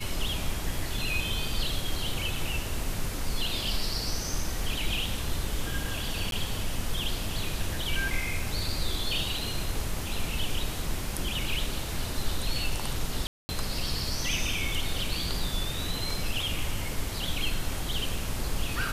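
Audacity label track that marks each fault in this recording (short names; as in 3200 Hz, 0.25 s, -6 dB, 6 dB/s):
6.310000	6.320000	gap 12 ms
13.270000	13.490000	gap 0.22 s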